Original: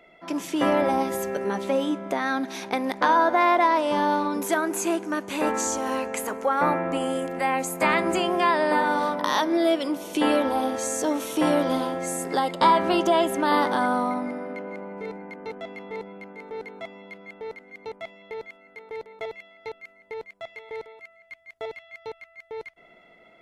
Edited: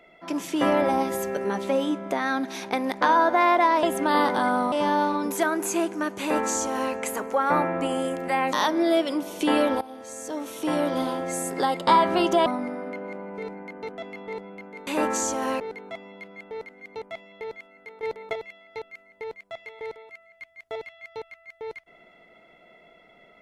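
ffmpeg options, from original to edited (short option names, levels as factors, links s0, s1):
-filter_complex "[0:a]asplit=10[s0][s1][s2][s3][s4][s5][s6][s7][s8][s9];[s0]atrim=end=3.832[s10];[s1]atrim=start=13.198:end=14.092[s11];[s2]atrim=start=3.828:end=7.642[s12];[s3]atrim=start=9.268:end=10.55,asetpts=PTS-STARTPTS,afade=t=out:st=1.278:d=0.004:c=hsin:silence=0.105925[s13];[s4]atrim=start=10.55:end=13.202,asetpts=PTS-STARTPTS,afade=t=in:d=1.49:silence=0.105925[s14];[s5]atrim=start=14.088:end=16.502[s15];[s6]atrim=start=5.308:end=6.042[s16];[s7]atrim=start=16.498:end=18.932[s17];[s8]atrim=start=18.928:end=19.232,asetpts=PTS-STARTPTS,volume=1.88[s18];[s9]atrim=start=19.228[s19];[s10][s11]acrossfade=d=0.004:c1=hsin:c2=hsin[s20];[s20][s12]acrossfade=d=0.004:c1=hsin:c2=hsin[s21];[s13][s14]concat=n=2:v=0:a=1[s22];[s21][s22]acrossfade=d=0.004:c1=hsin:c2=hsin[s23];[s23][s15]acrossfade=d=0.004:c1=hsin:c2=hsin[s24];[s24][s16]acrossfade=d=0.004:c1=hsin:c2=hsin[s25];[s25][s17]acrossfade=d=0.004:c1=hsin:c2=hsin[s26];[s26][s18]acrossfade=d=0.004:c1=hsin:c2=hsin[s27];[s27][s19]acrossfade=d=0.004:c1=hsin:c2=hsin"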